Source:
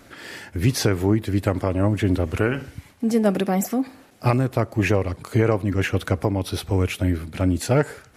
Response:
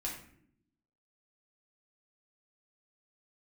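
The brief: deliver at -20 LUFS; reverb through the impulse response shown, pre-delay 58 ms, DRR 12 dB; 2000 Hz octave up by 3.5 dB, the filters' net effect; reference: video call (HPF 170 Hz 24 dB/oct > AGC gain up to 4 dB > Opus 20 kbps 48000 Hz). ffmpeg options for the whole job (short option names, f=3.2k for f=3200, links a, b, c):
-filter_complex "[0:a]equalizer=f=2k:t=o:g=4.5,asplit=2[a][b];[1:a]atrim=start_sample=2205,adelay=58[c];[b][c]afir=irnorm=-1:irlink=0,volume=-13dB[d];[a][d]amix=inputs=2:normalize=0,highpass=f=170:w=0.5412,highpass=f=170:w=1.3066,dynaudnorm=m=4dB,volume=4dB" -ar 48000 -c:a libopus -b:a 20k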